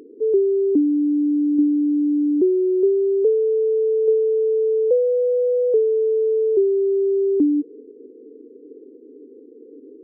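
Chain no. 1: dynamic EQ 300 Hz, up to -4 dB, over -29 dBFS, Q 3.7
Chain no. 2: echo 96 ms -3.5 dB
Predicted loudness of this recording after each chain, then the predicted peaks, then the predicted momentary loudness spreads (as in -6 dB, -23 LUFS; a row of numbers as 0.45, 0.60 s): -20.0, -18.0 LUFS; -9.5, -7.0 dBFS; 5, 6 LU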